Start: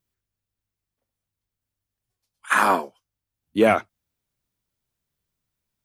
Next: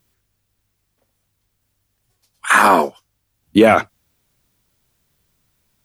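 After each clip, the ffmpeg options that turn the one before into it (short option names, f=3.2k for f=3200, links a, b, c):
-af "alimiter=level_in=16.5dB:limit=-1dB:release=50:level=0:latency=1,volume=-1dB"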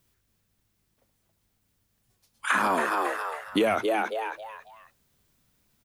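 -filter_complex "[0:a]asplit=5[a][b][c][d][e];[b]adelay=273,afreqshift=110,volume=-7dB[f];[c]adelay=546,afreqshift=220,volume=-17.2dB[g];[d]adelay=819,afreqshift=330,volume=-27.3dB[h];[e]adelay=1092,afreqshift=440,volume=-37.5dB[i];[a][f][g][h][i]amix=inputs=5:normalize=0,acrossover=split=340|6200[j][k][l];[j]acompressor=threshold=-31dB:ratio=4[m];[k]acompressor=threshold=-19dB:ratio=4[n];[l]acompressor=threshold=-43dB:ratio=4[o];[m][n][o]amix=inputs=3:normalize=0,volume=-4dB"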